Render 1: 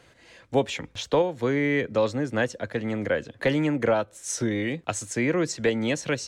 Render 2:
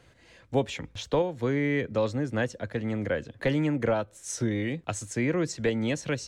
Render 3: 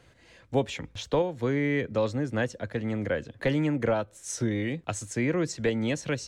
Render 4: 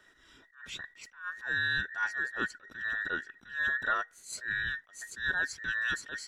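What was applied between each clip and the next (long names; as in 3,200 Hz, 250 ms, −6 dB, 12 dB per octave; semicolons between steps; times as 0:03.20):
low-shelf EQ 160 Hz +9 dB; level −4.5 dB
no processing that can be heard
frequency inversion band by band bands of 2,000 Hz; level that may rise only so fast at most 160 dB per second; level −4 dB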